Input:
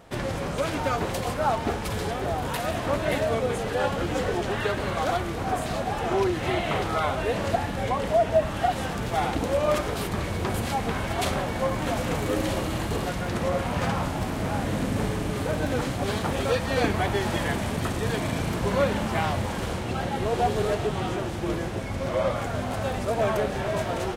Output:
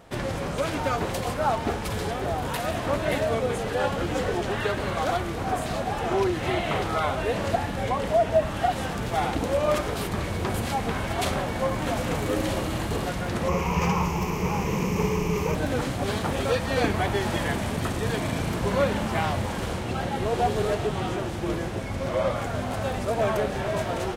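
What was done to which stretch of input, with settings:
13.48–15.55 s: rippled EQ curve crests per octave 0.78, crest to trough 14 dB

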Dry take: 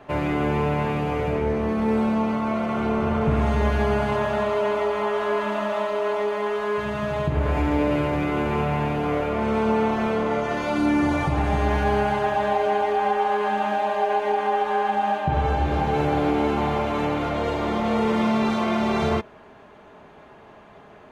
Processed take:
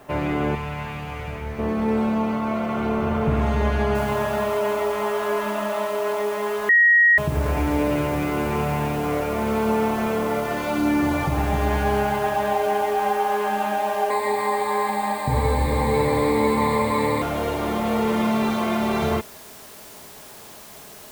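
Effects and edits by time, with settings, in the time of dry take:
0.55–1.59 s: peaking EQ 360 Hz -14 dB 2.3 oct
3.95 s: noise floor step -61 dB -44 dB
6.69–7.18 s: bleep 1.89 kHz -11.5 dBFS
14.10–17.22 s: rippled EQ curve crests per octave 0.98, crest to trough 17 dB

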